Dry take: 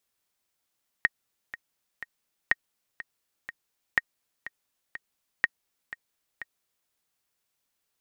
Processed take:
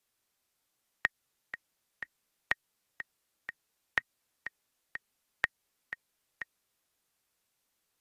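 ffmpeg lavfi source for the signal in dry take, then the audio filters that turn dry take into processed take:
-f lavfi -i "aevalsrc='pow(10,(-7.5-16*gte(mod(t,3*60/123),60/123))/20)*sin(2*PI*1870*mod(t,60/123))*exp(-6.91*mod(t,60/123)/0.03)':duration=5.85:sample_rate=44100"
-filter_complex "[0:a]acrossover=split=160|3000[link_01][link_02][link_03];[link_02]acompressor=threshold=-27dB:ratio=6[link_04];[link_01][link_04][link_03]amix=inputs=3:normalize=0" -ar 32000 -c:a aac -b:a 48k

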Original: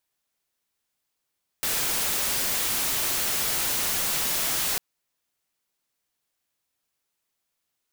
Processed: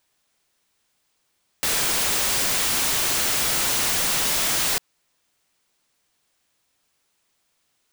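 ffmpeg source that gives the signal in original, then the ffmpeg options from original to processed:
-f lavfi -i "anoisesrc=color=white:amplitude=0.0868:duration=3.15:sample_rate=44100:seed=1"
-filter_complex "[0:a]equalizer=frequency=14000:width_type=o:width=0.33:gain=-14,asplit=2[link_01][link_02];[link_02]aeval=exprs='0.119*sin(PI/2*3.16*val(0)/0.119)':channel_layout=same,volume=-6dB[link_03];[link_01][link_03]amix=inputs=2:normalize=0"

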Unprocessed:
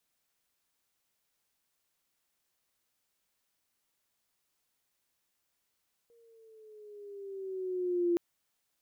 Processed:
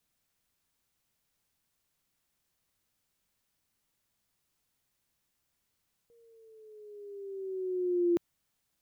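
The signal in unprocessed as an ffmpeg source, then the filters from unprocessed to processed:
-f lavfi -i "aevalsrc='pow(10,(-24+36.5*(t/2.07-1))/20)*sin(2*PI*471*2.07/(-5.5*log(2)/12)*(exp(-5.5*log(2)/12*t/2.07)-1))':duration=2.07:sample_rate=44100"
-af "bass=frequency=250:gain=9,treble=frequency=4000:gain=0"

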